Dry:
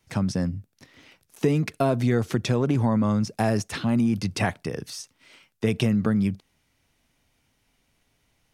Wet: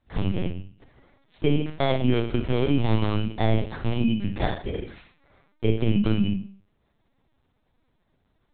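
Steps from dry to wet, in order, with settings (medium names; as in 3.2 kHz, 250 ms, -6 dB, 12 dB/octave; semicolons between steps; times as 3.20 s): bit-reversed sample order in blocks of 16 samples; Schroeder reverb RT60 0.46 s, combs from 28 ms, DRR 4 dB; LPC vocoder at 8 kHz pitch kept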